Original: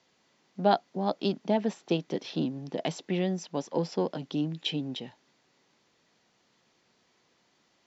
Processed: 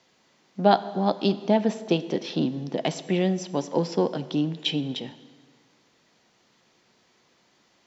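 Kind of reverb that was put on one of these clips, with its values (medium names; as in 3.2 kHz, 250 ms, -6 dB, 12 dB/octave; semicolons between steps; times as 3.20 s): plate-style reverb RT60 1.6 s, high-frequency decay 0.8×, DRR 13 dB; trim +5 dB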